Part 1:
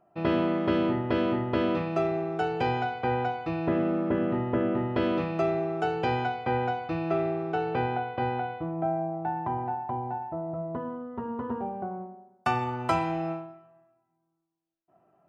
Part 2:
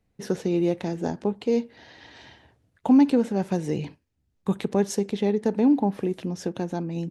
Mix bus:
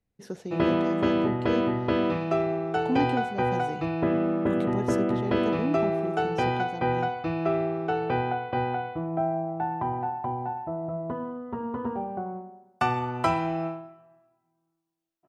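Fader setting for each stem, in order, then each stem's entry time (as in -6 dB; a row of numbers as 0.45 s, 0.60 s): +1.5 dB, -10.0 dB; 0.35 s, 0.00 s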